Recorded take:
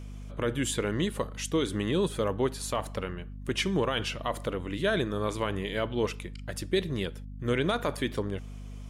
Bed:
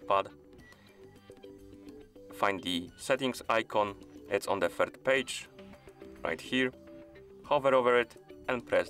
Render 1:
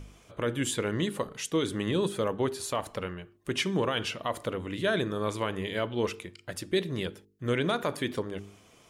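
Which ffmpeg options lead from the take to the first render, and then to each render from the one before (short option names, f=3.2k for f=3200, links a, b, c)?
-af "bandreject=f=50:t=h:w=4,bandreject=f=100:t=h:w=4,bandreject=f=150:t=h:w=4,bandreject=f=200:t=h:w=4,bandreject=f=250:t=h:w=4,bandreject=f=300:t=h:w=4,bandreject=f=350:t=h:w=4,bandreject=f=400:t=h:w=4,bandreject=f=450:t=h:w=4"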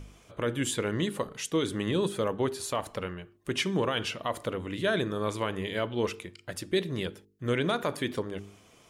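-af anull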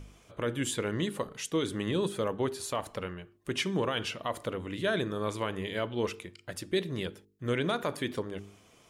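-af "volume=-2dB"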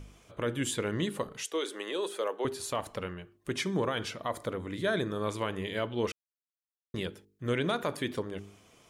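-filter_complex "[0:a]asettb=1/sr,asplit=3[a][b][c];[a]atrim=end=1.434[d];[b]atrim=start=1.43:end=2.45,asetpts=PTS-STARTPTS,afade=t=in:d=0.004:c=qsin,afade=t=out:st=1.016:d=0.004:c=qsin,highpass=f=380:w=0.5412,highpass=f=380:w=1.3066[e];[c]atrim=start=2.446[f];[d][e]acrossfade=d=0.004:c1=hsin:c2=qsin[g];[g][f]acrossfade=d=0.004:c1=qsin:c2=hsin,asettb=1/sr,asplit=3[h][i][j];[h]atrim=end=3.544[k];[i]atrim=start=3.54:end=5.09,asetpts=PTS-STARTPTS,afade=t=in:d=0.004:c=qsin,afade=t=out:st=1.546:d=0.004:c=qsin,equalizer=f=2.8k:w=6.7:g=-11[l];[j]atrim=start=5.086[m];[k][l]acrossfade=d=0.004:c1=hsin:c2=qsin[n];[n][m]acrossfade=d=0.004:c1=qsin:c2=hsin,asplit=3[o][p][q];[o]atrim=end=6.12,asetpts=PTS-STARTPTS,afade=t=out:st=6.116:d=0.004:c=hsin[r];[p]atrim=start=6.12:end=6.94,asetpts=PTS-STARTPTS,volume=0[s];[q]atrim=start=6.94,asetpts=PTS-STARTPTS,afade=t=in:d=0.004:c=hsin[t];[r][s][t]concat=n=3:v=0:a=1"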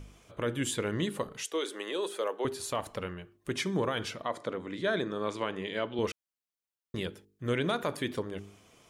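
-filter_complex "[0:a]asettb=1/sr,asplit=3[a][b][c];[a]atrim=end=4.224[d];[b]atrim=start=4.22:end=5.99,asetpts=PTS-STARTPTS,afade=t=in:d=0.004:c=qsin,afade=t=out:st=1.766:d=0.004:c=qsin,highpass=170,lowpass=6.5k[e];[c]atrim=start=5.986[f];[d][e]acrossfade=d=0.004:c1=hsin:c2=qsin[g];[g][f]acrossfade=d=0.004:c1=qsin:c2=hsin"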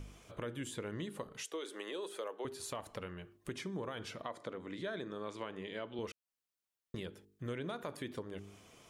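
-filter_complex "[0:a]acrossover=split=1400[a][b];[b]alimiter=level_in=4dB:limit=-24dB:level=0:latency=1:release=310,volume=-4dB[c];[a][c]amix=inputs=2:normalize=0,acompressor=threshold=-43dB:ratio=2.5"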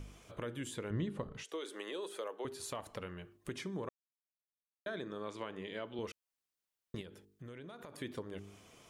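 -filter_complex "[0:a]asettb=1/sr,asplit=3[a][b][c];[a]atrim=end=0.904[d];[b]atrim=start=0.9:end=1.49,asetpts=PTS-STARTPTS,afade=t=in:d=0.004:c=qsin,afade=t=out:st=0.586:d=0.004:c=qsin,aemphasis=mode=reproduction:type=bsi[e];[c]atrim=start=1.486[f];[d][e]acrossfade=d=0.004:c1=hsin:c2=qsin[g];[g][f]acrossfade=d=0.004:c1=qsin:c2=hsin,asettb=1/sr,asplit=3[h][i][j];[h]atrim=end=7.014[k];[i]atrim=start=7.01:end=8.02,asetpts=PTS-STARTPTS,afade=t=in:d=0.004:c=qsin,afade=t=out:st=1.006:d=0.004:c=qsin,acompressor=threshold=-46dB:ratio=6:attack=3.2:release=140:knee=1:detection=peak[l];[j]atrim=start=8.016[m];[k][l]acrossfade=d=0.004:c1=hsin:c2=qsin[n];[n][m]acrossfade=d=0.004:c1=qsin:c2=hsin,asplit=3[o][p][q];[o]atrim=end=3.89,asetpts=PTS-STARTPTS,afade=t=out:st=3.886:d=0.004:c=hsin[r];[p]atrim=start=3.89:end=4.86,asetpts=PTS-STARTPTS,volume=0[s];[q]atrim=start=4.86,asetpts=PTS-STARTPTS,afade=t=in:d=0.004:c=hsin[t];[r][s][t]concat=n=3:v=0:a=1"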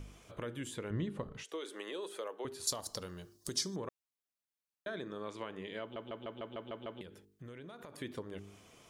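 -filter_complex "[0:a]asettb=1/sr,asplit=3[a][b][c];[a]atrim=end=2.674[d];[b]atrim=start=2.67:end=3.76,asetpts=PTS-STARTPTS,afade=t=in:d=0.004:c=qsin,afade=t=out:st=1.086:d=0.004:c=qsin,highshelf=f=3.5k:t=q:w=3:g=12.5[e];[c]atrim=start=3.756[f];[d][e]acrossfade=d=0.004:c1=hsin:c2=qsin[g];[g][f]acrossfade=d=0.004:c1=qsin:c2=hsin,asplit=9[h][i][j][k][l][m][n][o][p];[h]atrim=end=5.962[q];[i]atrim=start=5.808:end=5.962[r];[j]atrim=start=5.808:end=5.962[s];[k]atrim=start=5.808:end=5.962[t];[l]atrim=start=5.808:end=5.962[u];[m]atrim=start=5.808:end=5.962[v];[n]atrim=start=5.808:end=5.962[w];[o]atrim=start=5.808:end=5.962[x];[p]atrim=start=7.008[y];[q][r]acrossfade=d=0.004:c1=hsin:c2=hsin[z];[z][s]acrossfade=d=0.004:c1=hsin:c2=hsin[aa];[aa][t]acrossfade=d=0.004:c1=hsin:c2=hsin[ab];[ab][u]acrossfade=d=0.004:c1=hsin:c2=hsin[ac];[ac][v]acrossfade=d=0.004:c1=hsin:c2=hsin[ad];[ad][w]acrossfade=d=0.004:c1=hsin:c2=hsin[ae];[ae][x]acrossfade=d=0.004:c1=hsin:c2=hsin[af];[af][y]acrossfade=d=0.004:c1=hsin:c2=hsin"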